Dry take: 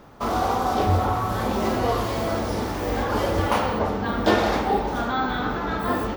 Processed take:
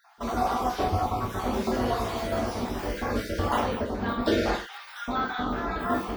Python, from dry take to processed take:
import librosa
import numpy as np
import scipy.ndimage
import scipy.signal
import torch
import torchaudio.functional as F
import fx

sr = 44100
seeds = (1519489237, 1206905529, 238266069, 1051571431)

y = fx.spec_dropout(x, sr, seeds[0], share_pct=32)
y = fx.highpass(y, sr, hz=1400.0, slope=24, at=(4.54, 5.08))
y = fx.rev_gated(y, sr, seeds[1], gate_ms=140, shape='falling', drr_db=-0.5)
y = y * 10.0 ** (-6.0 / 20.0)